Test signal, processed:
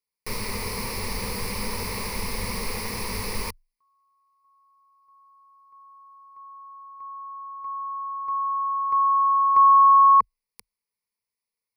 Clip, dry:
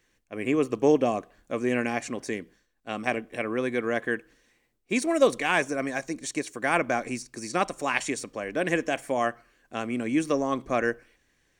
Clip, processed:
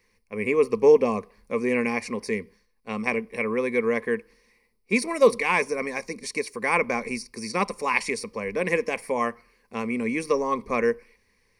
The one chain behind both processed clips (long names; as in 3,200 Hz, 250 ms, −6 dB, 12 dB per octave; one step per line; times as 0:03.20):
EQ curve with evenly spaced ripples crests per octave 0.88, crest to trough 14 dB